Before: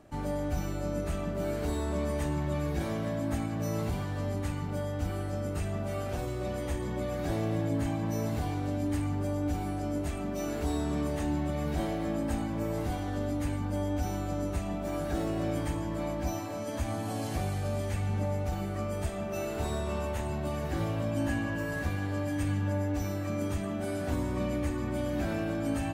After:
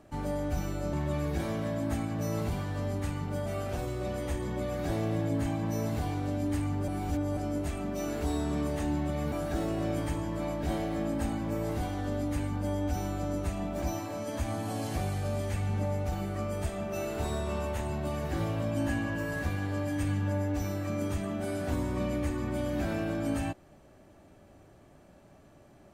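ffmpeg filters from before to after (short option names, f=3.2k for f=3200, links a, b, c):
-filter_complex "[0:a]asplit=8[a][b][c][d][e][f][g][h];[a]atrim=end=0.932[i];[b]atrim=start=2.338:end=4.872[j];[c]atrim=start=5.858:end=9.282[k];[d]atrim=start=9.278:end=9.772,asetpts=PTS-STARTPTS,areverse[l];[e]atrim=start=9.768:end=11.722[m];[f]atrim=start=14.908:end=16.222[n];[g]atrim=start=11.718:end=14.912[o];[h]atrim=start=16.218[p];[i][j]acrossfade=d=0.004:c1=hsin:c2=hsin[q];[q][k]acrossfade=d=0.004:c1=hsin:c2=hsin[r];[r][l]acrossfade=d=0.004:c1=hsin:c2=hsin[s];[s][m]acrossfade=d=0.004:c1=hsin:c2=hsin[t];[t][n]acrossfade=d=0.004:c1=hsin:c2=hsin[u];[u][o]acrossfade=d=0.004:c1=hsin:c2=hsin[v];[v][p]acrossfade=d=0.004:c1=hsin:c2=hsin"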